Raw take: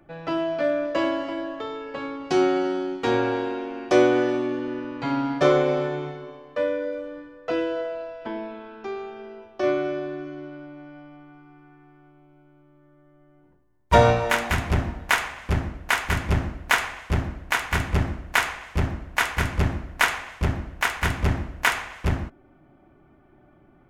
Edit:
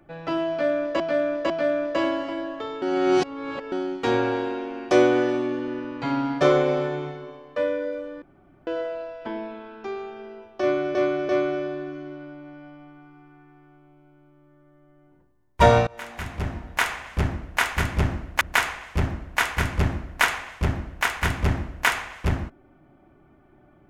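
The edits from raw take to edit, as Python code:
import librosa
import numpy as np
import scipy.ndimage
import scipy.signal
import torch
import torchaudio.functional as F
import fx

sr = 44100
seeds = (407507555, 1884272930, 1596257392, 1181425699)

y = fx.edit(x, sr, fx.repeat(start_s=0.5, length_s=0.5, count=3),
    fx.reverse_span(start_s=1.82, length_s=0.9),
    fx.room_tone_fill(start_s=7.22, length_s=0.45),
    fx.repeat(start_s=9.61, length_s=0.34, count=3),
    fx.fade_in_from(start_s=14.19, length_s=1.2, floor_db=-24.0),
    fx.cut(start_s=16.73, length_s=1.48), tone=tone)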